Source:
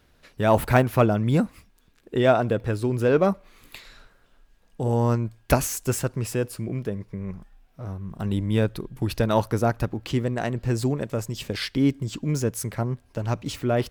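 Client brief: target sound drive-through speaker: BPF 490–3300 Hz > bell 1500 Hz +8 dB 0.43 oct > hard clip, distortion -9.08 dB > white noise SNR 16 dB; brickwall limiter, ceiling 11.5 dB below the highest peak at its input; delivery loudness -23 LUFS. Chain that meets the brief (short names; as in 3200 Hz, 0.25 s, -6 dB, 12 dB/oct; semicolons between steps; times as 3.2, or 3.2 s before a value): limiter -17 dBFS; BPF 490–3300 Hz; bell 1500 Hz +8 dB 0.43 oct; hard clip -26.5 dBFS; white noise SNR 16 dB; gain +12.5 dB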